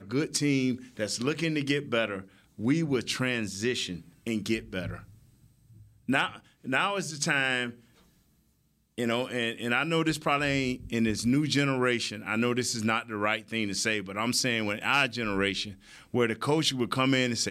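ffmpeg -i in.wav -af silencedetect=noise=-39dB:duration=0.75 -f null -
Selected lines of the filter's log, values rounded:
silence_start: 5.00
silence_end: 6.09 | silence_duration: 1.08
silence_start: 7.71
silence_end: 8.98 | silence_duration: 1.27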